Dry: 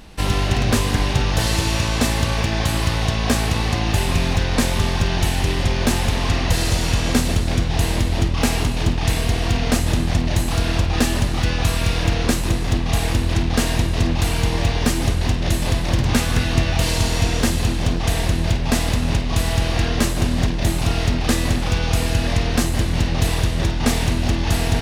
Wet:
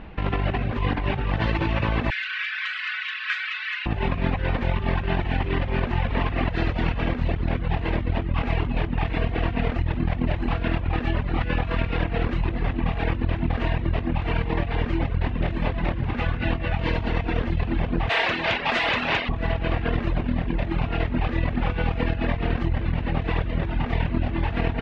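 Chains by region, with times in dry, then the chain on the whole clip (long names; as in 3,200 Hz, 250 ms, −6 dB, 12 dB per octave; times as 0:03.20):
0:02.10–0:03.86: Butterworth high-pass 1,400 Hz 48 dB per octave + comb filter 4.7 ms, depth 90%
0:18.09–0:19.29: RIAA equalisation recording + mid-hump overdrive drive 12 dB, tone 7,600 Hz, clips at −3.5 dBFS
whole clip: low-pass filter 2,600 Hz 24 dB per octave; reverb reduction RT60 0.68 s; compressor whose output falls as the input rises −24 dBFS, ratio −1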